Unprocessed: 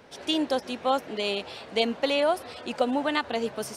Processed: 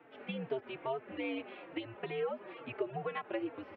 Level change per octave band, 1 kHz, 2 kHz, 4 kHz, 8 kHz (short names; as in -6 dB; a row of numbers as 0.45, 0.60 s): -14.0 dB, -12.0 dB, -20.5 dB, under -35 dB